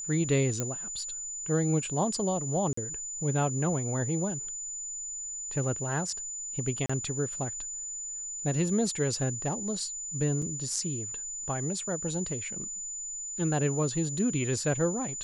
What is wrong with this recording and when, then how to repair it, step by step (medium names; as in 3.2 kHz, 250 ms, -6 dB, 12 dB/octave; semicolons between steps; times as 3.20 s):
whine 7 kHz -35 dBFS
0.60 s: pop -16 dBFS
2.73–2.77 s: dropout 44 ms
6.86–6.89 s: dropout 35 ms
10.42 s: dropout 4.6 ms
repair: de-click; band-stop 7 kHz, Q 30; interpolate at 2.73 s, 44 ms; interpolate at 6.86 s, 35 ms; interpolate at 10.42 s, 4.6 ms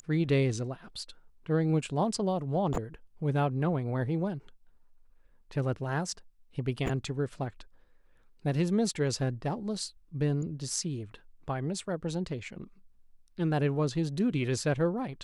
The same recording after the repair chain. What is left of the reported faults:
nothing left